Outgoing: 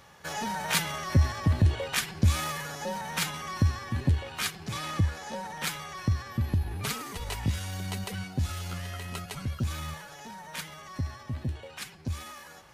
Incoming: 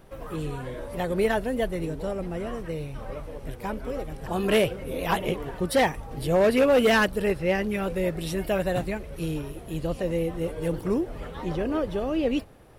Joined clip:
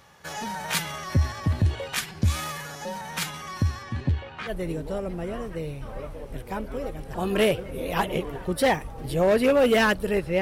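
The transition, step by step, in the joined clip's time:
outgoing
0:03.82–0:04.55: low-pass filter 8,200 Hz → 1,600 Hz
0:04.50: continue with incoming from 0:01.63, crossfade 0.10 s

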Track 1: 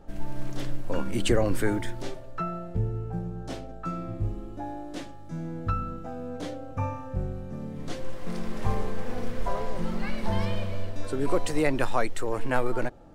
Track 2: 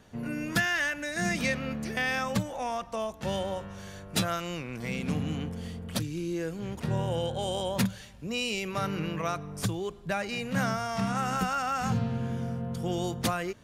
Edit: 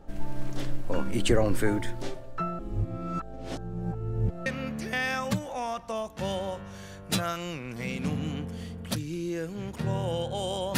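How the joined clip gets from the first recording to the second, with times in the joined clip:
track 1
0:02.59–0:04.46: reverse
0:04.46: continue with track 2 from 0:01.50

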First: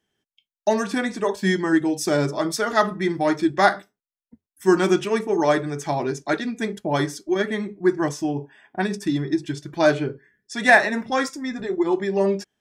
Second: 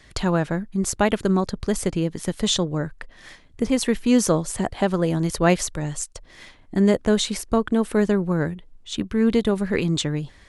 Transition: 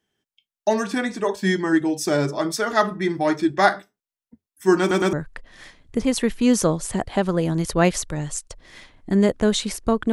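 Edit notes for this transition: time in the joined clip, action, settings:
first
0:04.80: stutter in place 0.11 s, 3 plays
0:05.13: continue with second from 0:02.78

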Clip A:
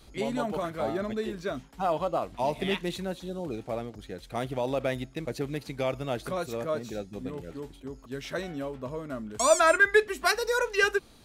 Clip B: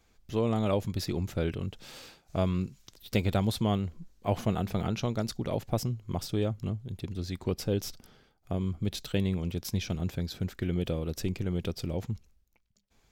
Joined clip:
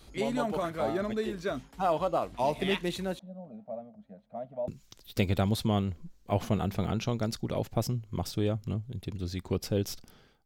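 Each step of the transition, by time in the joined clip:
clip A
0:03.19–0:04.68: pair of resonant band-passes 360 Hz, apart 1.6 octaves
0:04.68: continue with clip B from 0:02.64

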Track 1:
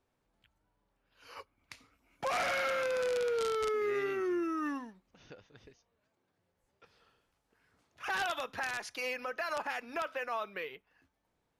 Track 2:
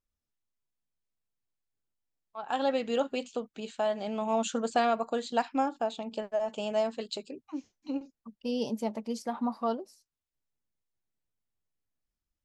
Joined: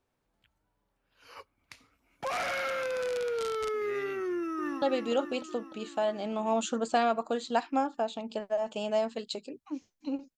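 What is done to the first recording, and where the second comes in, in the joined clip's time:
track 1
0:04.28–0:04.82: delay throw 300 ms, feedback 70%, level −6.5 dB
0:04.82: continue with track 2 from 0:02.64

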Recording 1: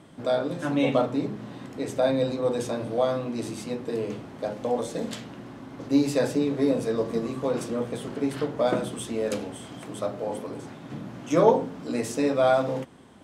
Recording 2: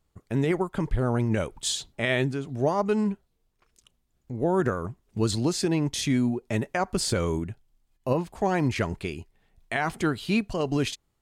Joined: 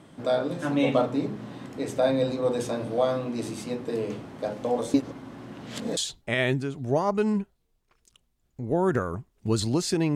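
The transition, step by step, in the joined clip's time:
recording 1
0:04.94–0:05.97: reverse
0:05.97: continue with recording 2 from 0:01.68

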